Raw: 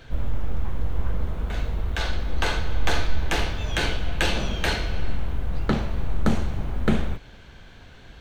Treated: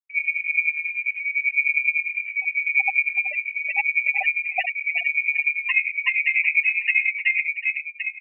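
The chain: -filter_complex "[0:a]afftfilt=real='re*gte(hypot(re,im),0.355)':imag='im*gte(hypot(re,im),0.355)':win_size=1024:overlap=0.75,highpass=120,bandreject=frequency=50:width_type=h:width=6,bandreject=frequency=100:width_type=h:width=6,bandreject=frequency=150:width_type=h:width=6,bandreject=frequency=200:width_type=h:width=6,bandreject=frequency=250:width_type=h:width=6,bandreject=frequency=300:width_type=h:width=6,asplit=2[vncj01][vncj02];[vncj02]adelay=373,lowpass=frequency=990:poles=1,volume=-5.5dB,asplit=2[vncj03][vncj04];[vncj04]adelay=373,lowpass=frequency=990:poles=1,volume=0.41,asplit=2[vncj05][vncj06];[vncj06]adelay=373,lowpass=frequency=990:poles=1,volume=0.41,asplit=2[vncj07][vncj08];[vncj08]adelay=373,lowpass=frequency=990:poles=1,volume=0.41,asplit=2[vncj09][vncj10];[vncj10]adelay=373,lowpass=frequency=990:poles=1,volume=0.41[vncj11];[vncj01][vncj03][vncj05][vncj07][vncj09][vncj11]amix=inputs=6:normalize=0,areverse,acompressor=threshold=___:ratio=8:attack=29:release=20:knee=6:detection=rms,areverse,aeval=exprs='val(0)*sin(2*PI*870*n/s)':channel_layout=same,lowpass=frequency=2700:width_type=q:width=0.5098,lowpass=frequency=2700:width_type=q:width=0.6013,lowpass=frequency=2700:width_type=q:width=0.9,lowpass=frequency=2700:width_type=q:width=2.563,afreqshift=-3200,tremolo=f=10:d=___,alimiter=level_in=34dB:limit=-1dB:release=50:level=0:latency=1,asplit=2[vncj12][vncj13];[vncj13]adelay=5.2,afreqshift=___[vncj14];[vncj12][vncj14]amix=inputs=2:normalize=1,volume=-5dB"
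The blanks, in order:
-41dB, 0.85, -0.84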